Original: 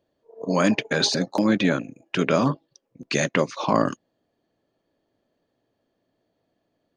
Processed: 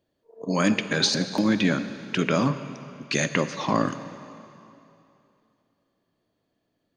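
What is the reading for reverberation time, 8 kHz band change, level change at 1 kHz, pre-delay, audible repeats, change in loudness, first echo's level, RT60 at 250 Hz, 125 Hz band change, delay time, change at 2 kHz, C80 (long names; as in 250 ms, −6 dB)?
2.8 s, +0.5 dB, −2.5 dB, 7 ms, no echo audible, −1.5 dB, no echo audible, 2.8 s, 0.0 dB, no echo audible, −0.5 dB, 12.5 dB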